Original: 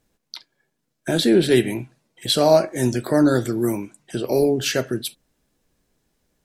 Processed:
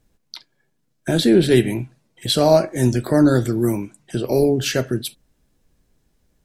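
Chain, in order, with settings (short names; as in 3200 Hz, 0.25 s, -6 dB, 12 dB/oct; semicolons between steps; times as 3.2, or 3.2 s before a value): low shelf 150 Hz +10 dB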